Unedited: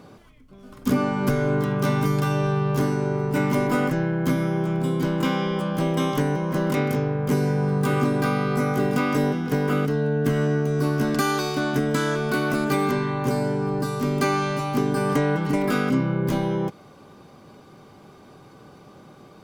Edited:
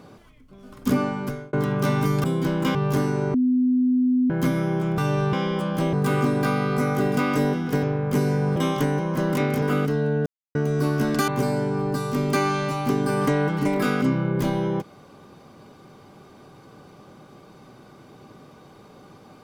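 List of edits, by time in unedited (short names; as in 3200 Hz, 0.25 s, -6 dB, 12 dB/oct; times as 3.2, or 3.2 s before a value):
0.96–1.53 fade out
2.24–2.59 swap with 4.82–5.33
3.18–4.14 bleep 252 Hz -16.5 dBFS
5.93–6.99 swap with 7.72–9.62
10.26–10.55 mute
11.28–13.16 cut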